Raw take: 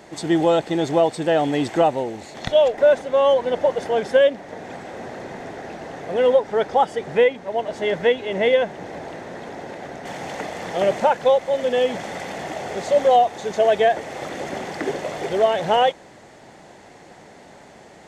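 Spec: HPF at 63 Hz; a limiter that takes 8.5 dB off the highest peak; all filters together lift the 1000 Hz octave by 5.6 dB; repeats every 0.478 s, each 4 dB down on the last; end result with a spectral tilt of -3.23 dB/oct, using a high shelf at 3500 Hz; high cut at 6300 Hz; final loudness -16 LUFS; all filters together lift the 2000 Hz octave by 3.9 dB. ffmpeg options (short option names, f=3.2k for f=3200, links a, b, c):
-af "highpass=63,lowpass=6.3k,equalizer=f=1k:t=o:g=8,equalizer=f=2k:t=o:g=3.5,highshelf=f=3.5k:g=-5,alimiter=limit=-10dB:level=0:latency=1,aecho=1:1:478|956|1434|1912|2390|2868|3346|3824|4302:0.631|0.398|0.25|0.158|0.0994|0.0626|0.0394|0.0249|0.0157,volume=3.5dB"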